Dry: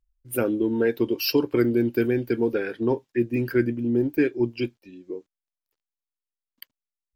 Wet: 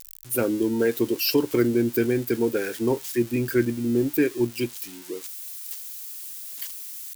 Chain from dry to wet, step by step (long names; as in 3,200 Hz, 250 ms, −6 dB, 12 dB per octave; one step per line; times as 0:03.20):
spike at every zero crossing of −26.5 dBFS